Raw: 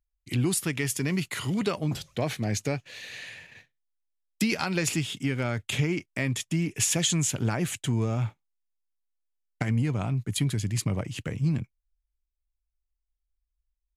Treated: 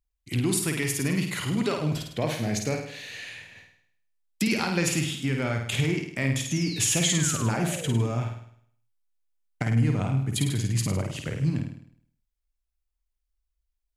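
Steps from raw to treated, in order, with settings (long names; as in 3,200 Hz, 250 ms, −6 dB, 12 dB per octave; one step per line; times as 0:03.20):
sound drawn into the spectrogram fall, 0:06.45–0:08.08, 290–7,100 Hz −40 dBFS
flutter between parallel walls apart 8.9 metres, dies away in 0.63 s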